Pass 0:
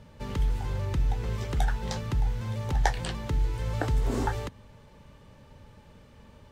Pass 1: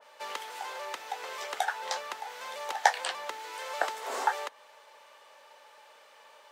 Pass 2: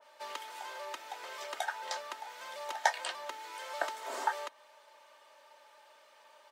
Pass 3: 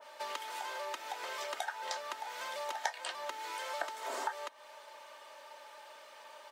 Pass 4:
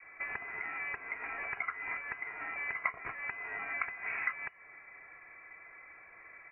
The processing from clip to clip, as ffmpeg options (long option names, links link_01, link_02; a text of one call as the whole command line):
ffmpeg -i in.wav -af "highpass=frequency=610:width=0.5412,highpass=frequency=610:width=1.3066,adynamicequalizer=threshold=0.00447:dfrequency=2300:dqfactor=0.7:tfrequency=2300:tqfactor=0.7:attack=5:release=100:ratio=0.375:range=2:mode=cutabove:tftype=highshelf,volume=5.5dB" out.wav
ffmpeg -i in.wav -af "aecho=1:1:3.2:0.52,volume=-5.5dB" out.wav
ffmpeg -i in.wav -af "acompressor=threshold=-46dB:ratio=2.5,volume=7dB" out.wav
ffmpeg -i in.wav -filter_complex "[0:a]asplit=2[link_01][link_02];[link_02]acrusher=bits=5:mix=0:aa=0.5,volume=-11dB[link_03];[link_01][link_03]amix=inputs=2:normalize=0,lowpass=frequency=2500:width_type=q:width=0.5098,lowpass=frequency=2500:width_type=q:width=0.6013,lowpass=frequency=2500:width_type=q:width=0.9,lowpass=frequency=2500:width_type=q:width=2.563,afreqshift=-2900" out.wav